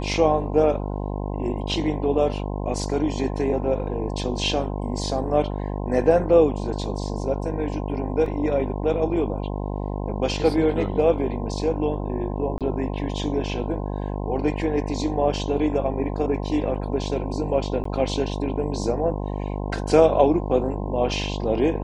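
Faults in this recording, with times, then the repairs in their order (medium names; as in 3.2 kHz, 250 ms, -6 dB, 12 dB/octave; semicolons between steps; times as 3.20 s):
buzz 50 Hz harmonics 21 -28 dBFS
8.26 s: dropout 3 ms
12.58–12.61 s: dropout 27 ms
17.84–17.85 s: dropout 14 ms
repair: de-hum 50 Hz, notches 21; interpolate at 8.26 s, 3 ms; interpolate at 12.58 s, 27 ms; interpolate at 17.84 s, 14 ms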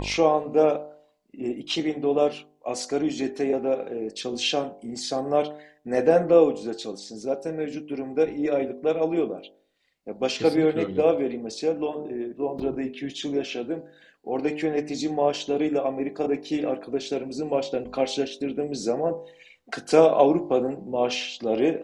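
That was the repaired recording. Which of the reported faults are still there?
nothing left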